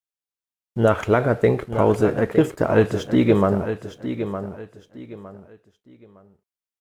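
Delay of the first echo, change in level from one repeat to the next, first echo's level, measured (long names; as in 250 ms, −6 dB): 911 ms, −11.0 dB, −10.0 dB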